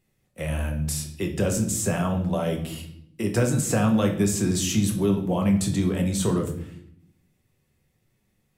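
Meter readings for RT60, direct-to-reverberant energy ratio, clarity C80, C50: 0.70 s, 2.0 dB, 12.5 dB, 9.0 dB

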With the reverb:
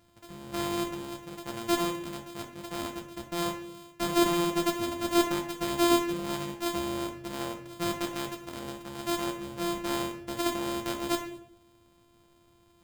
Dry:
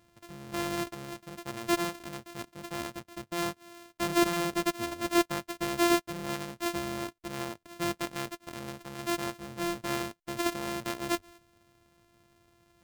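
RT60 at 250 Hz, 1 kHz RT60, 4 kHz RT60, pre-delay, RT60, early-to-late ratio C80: 0.90 s, 0.60 s, 0.45 s, 6 ms, 0.70 s, 13.0 dB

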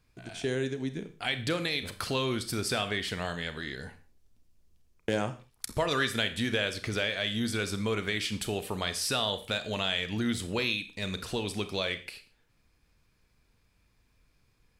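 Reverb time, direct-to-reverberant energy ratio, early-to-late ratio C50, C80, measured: non-exponential decay, 10.0 dB, 13.5 dB, 16.5 dB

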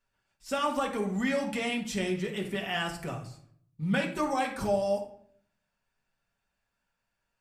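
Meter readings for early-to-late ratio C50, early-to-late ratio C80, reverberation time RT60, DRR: 8.5 dB, 13.0 dB, 0.60 s, −1.0 dB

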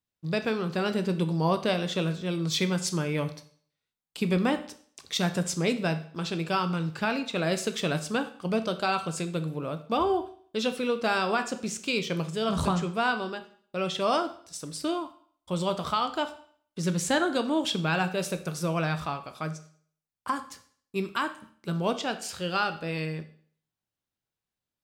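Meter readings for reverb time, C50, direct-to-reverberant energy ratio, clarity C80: 0.55 s, 13.5 dB, 8.5 dB, 16.5 dB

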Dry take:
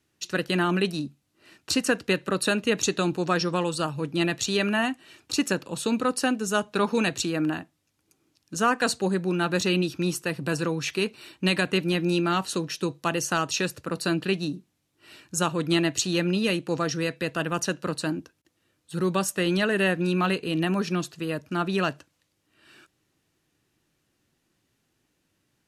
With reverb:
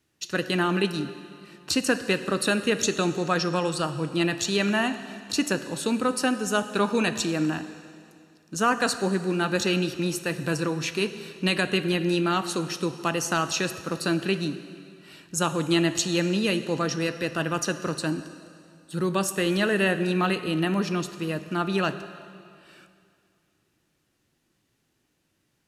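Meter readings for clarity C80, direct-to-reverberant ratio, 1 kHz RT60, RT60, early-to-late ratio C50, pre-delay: 12.5 dB, 10.5 dB, 2.4 s, 2.4 s, 11.5 dB, 5 ms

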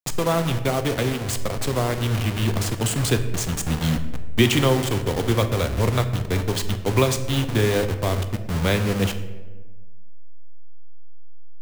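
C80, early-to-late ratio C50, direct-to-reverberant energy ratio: 12.5 dB, 11.0 dB, 8.0 dB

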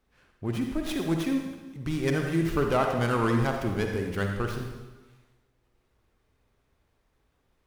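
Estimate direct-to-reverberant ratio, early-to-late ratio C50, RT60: 2.5 dB, 3.5 dB, 1.2 s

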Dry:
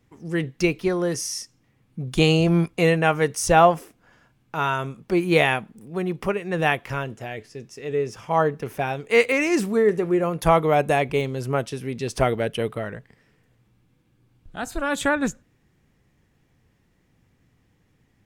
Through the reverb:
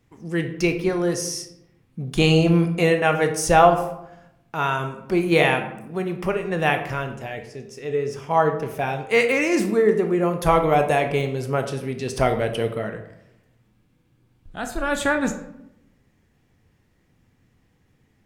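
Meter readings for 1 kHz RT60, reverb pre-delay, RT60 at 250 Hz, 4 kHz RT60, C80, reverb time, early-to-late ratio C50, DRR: 0.75 s, 16 ms, 1.0 s, 0.50 s, 12.5 dB, 0.85 s, 9.5 dB, 6.0 dB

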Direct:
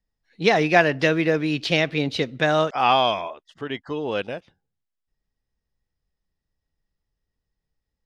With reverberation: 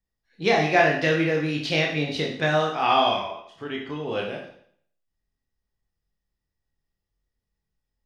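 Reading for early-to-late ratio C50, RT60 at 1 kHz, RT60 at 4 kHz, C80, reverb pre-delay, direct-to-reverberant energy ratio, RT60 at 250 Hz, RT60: 5.0 dB, 0.60 s, 0.60 s, 8.5 dB, 19 ms, −1.0 dB, 0.60 s, 0.60 s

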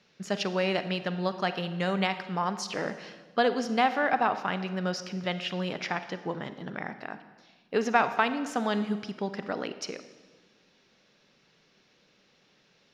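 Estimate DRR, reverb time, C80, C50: 11.0 dB, 1.4 s, 13.0 dB, 11.5 dB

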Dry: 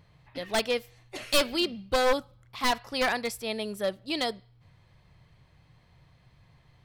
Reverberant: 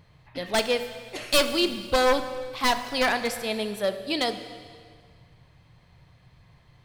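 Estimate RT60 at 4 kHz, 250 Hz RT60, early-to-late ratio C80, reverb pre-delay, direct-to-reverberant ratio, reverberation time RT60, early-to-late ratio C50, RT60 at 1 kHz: 1.8 s, 2.0 s, 11.5 dB, 6 ms, 9.0 dB, 1.9 s, 10.5 dB, 1.9 s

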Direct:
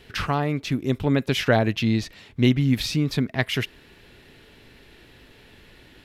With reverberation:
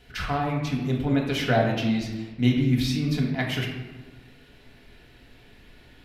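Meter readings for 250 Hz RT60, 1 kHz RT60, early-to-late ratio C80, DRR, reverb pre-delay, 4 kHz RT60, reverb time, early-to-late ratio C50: 1.8 s, 1.3 s, 6.0 dB, −2.0 dB, 3 ms, 0.70 s, 1.3 s, 4.0 dB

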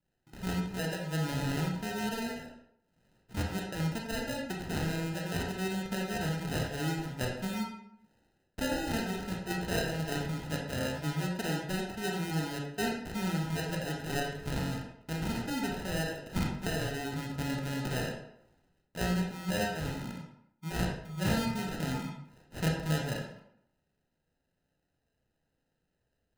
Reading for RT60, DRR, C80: 0.75 s, −0.5 dB, 6.5 dB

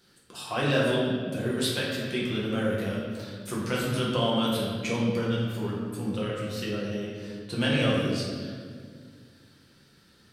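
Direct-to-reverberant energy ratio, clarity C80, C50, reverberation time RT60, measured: −6.0 dB, 1.5 dB, 0.0 dB, 1.9 s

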